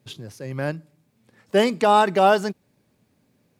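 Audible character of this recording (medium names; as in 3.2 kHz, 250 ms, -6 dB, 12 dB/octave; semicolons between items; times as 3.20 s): noise floor -67 dBFS; spectral tilt -3.5 dB/octave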